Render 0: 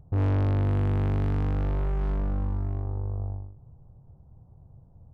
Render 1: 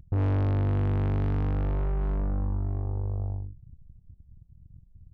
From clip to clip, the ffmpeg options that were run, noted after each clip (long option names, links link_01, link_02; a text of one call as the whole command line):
ffmpeg -i in.wav -af "anlmdn=0.398,acompressor=threshold=-33dB:ratio=2,volume=4.5dB" out.wav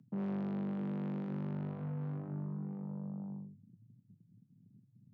ffmpeg -i in.wav -af "afreqshift=100,flanger=delay=8.1:depth=4:regen=-68:speed=1:shape=triangular,volume=-8.5dB" out.wav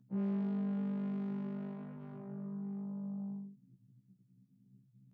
ffmpeg -i in.wav -af "afftfilt=real='re*1.73*eq(mod(b,3),0)':imag='im*1.73*eq(mod(b,3),0)':win_size=2048:overlap=0.75" out.wav